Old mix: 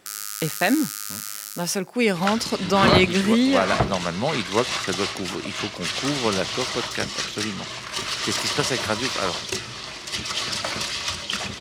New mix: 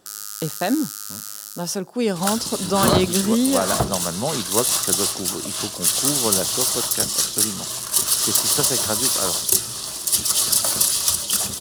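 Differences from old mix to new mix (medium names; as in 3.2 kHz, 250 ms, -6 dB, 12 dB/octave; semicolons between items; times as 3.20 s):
second sound: remove distance through air 160 m; master: add peaking EQ 2.2 kHz -14 dB 0.67 oct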